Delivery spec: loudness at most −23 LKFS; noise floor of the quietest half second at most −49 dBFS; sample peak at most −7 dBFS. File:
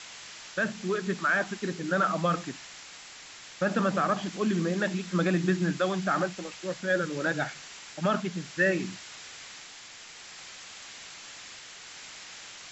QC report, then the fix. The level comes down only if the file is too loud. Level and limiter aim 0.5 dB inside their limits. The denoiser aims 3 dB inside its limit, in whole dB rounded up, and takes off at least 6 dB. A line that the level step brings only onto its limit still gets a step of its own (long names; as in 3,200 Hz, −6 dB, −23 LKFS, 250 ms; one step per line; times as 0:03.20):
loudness −29.0 LKFS: in spec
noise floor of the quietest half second −47 dBFS: out of spec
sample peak −13.0 dBFS: in spec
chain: broadband denoise 6 dB, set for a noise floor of −47 dBFS